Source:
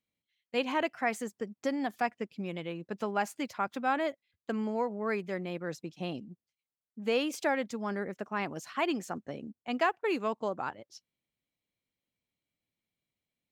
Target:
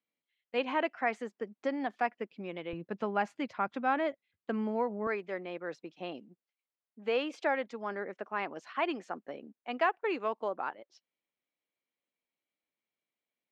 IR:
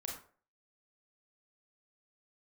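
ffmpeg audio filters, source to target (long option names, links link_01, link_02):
-af "asetnsamples=nb_out_samples=441:pad=0,asendcmd='2.73 highpass f 110;5.07 highpass f 350',highpass=270,lowpass=3000"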